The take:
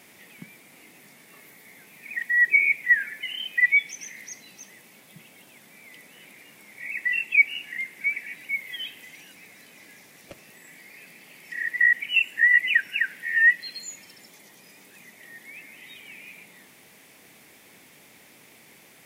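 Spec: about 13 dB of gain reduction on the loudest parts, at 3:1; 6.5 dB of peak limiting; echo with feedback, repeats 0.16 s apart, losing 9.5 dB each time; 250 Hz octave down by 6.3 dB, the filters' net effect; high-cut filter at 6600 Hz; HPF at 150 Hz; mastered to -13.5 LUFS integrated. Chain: HPF 150 Hz; LPF 6600 Hz; bell 250 Hz -7.5 dB; compressor 3:1, threshold -32 dBFS; limiter -27 dBFS; feedback echo 0.16 s, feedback 33%, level -9.5 dB; gain +22 dB

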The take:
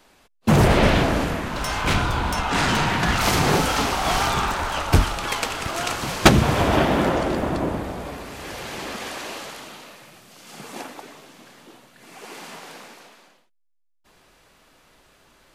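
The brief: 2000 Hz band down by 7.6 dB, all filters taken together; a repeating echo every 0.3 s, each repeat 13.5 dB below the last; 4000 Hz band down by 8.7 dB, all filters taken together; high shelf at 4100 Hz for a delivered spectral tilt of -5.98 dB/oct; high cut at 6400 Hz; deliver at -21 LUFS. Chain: LPF 6400 Hz; bell 2000 Hz -8 dB; bell 4000 Hz -5 dB; high shelf 4100 Hz -5 dB; feedback echo 0.3 s, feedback 21%, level -13.5 dB; gain +1.5 dB

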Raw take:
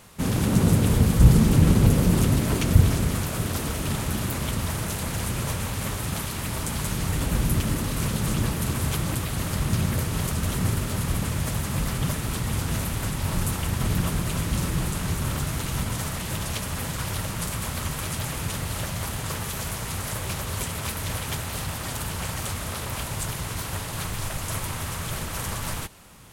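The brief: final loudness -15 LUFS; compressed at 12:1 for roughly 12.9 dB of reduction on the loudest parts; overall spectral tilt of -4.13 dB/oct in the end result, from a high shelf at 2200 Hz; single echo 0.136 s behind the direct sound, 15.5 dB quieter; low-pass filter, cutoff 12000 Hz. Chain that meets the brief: LPF 12000 Hz; high shelf 2200 Hz +3 dB; compressor 12:1, threshold -22 dBFS; echo 0.136 s -15.5 dB; gain +13 dB

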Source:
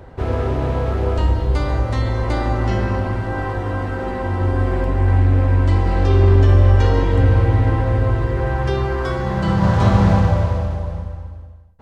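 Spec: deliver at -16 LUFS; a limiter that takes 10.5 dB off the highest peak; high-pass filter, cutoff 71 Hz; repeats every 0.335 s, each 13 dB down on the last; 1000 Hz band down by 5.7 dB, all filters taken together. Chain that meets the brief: HPF 71 Hz; bell 1000 Hz -7.5 dB; limiter -14.5 dBFS; feedback echo 0.335 s, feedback 22%, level -13 dB; gain +7 dB

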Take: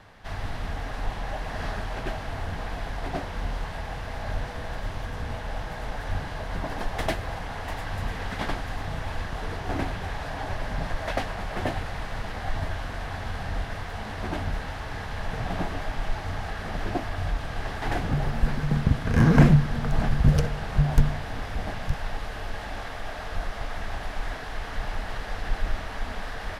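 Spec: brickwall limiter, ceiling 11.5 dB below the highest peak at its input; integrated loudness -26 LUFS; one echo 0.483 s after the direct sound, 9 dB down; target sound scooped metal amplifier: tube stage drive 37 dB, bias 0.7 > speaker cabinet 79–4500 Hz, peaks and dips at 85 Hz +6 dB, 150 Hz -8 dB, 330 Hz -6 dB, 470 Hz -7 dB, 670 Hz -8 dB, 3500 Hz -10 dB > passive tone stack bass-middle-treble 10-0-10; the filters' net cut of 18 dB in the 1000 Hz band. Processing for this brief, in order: bell 1000 Hz -7.5 dB; limiter -16 dBFS; echo 0.483 s -9 dB; tube stage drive 37 dB, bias 0.7; speaker cabinet 79–4500 Hz, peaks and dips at 85 Hz +6 dB, 150 Hz -8 dB, 330 Hz -6 dB, 470 Hz -7 dB, 670 Hz -8 dB, 3500 Hz -10 dB; passive tone stack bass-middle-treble 10-0-10; gain +26.5 dB

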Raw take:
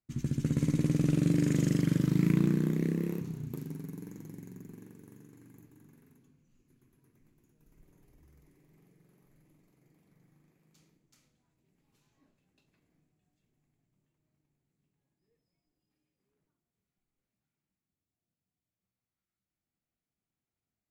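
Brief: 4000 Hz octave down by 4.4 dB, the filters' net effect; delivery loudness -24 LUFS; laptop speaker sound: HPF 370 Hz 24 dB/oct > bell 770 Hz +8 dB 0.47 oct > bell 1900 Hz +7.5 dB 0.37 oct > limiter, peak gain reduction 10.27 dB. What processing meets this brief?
HPF 370 Hz 24 dB/oct; bell 770 Hz +8 dB 0.47 oct; bell 1900 Hz +7.5 dB 0.37 oct; bell 4000 Hz -6.5 dB; gain +23 dB; limiter -9.5 dBFS

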